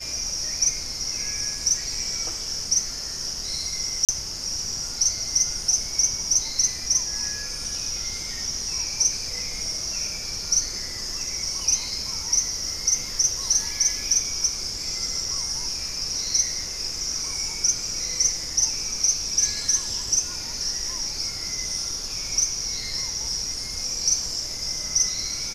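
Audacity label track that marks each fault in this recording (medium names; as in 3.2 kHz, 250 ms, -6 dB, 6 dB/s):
4.050000	4.090000	dropout 37 ms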